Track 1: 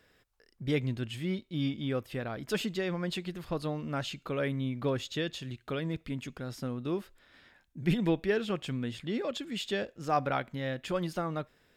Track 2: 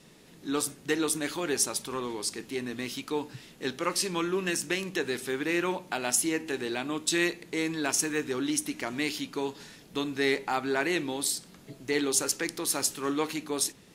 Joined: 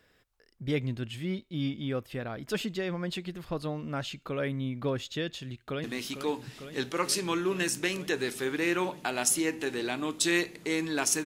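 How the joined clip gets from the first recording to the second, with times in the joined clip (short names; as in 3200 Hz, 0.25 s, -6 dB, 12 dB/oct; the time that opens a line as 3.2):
track 1
5.37–5.84 echo throw 0.45 s, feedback 85%, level -9 dB
5.84 switch to track 2 from 2.71 s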